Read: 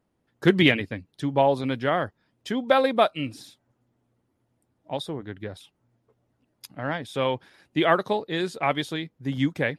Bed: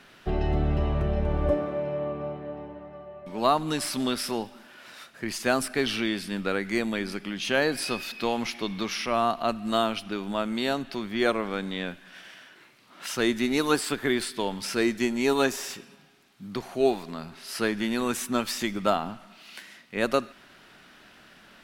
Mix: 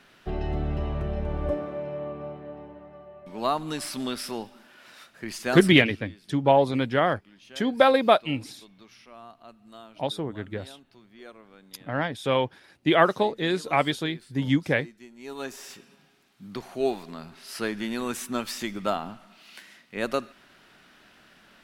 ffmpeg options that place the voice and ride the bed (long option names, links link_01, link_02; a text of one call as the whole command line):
ffmpeg -i stem1.wav -i stem2.wav -filter_complex "[0:a]adelay=5100,volume=1.5dB[link_01];[1:a]volume=15.5dB,afade=type=out:start_time=5.63:duration=0.25:silence=0.11885,afade=type=in:start_time=15.16:duration=0.93:silence=0.112202[link_02];[link_01][link_02]amix=inputs=2:normalize=0" out.wav